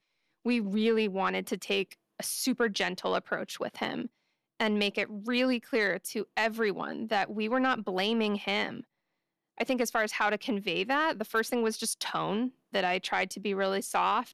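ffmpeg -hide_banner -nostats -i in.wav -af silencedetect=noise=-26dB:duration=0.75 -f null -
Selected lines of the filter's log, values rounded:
silence_start: 8.69
silence_end: 9.60 | silence_duration: 0.92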